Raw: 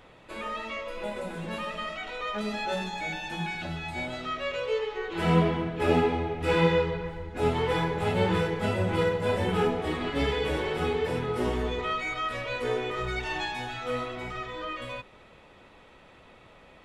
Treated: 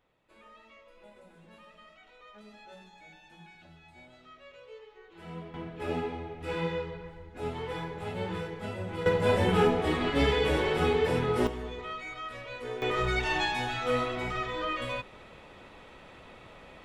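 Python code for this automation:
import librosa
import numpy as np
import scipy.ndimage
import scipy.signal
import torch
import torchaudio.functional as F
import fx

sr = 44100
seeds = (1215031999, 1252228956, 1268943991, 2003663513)

y = fx.gain(x, sr, db=fx.steps((0.0, -20.0), (5.54, -9.5), (9.06, 2.0), (11.47, -8.5), (12.82, 3.0)))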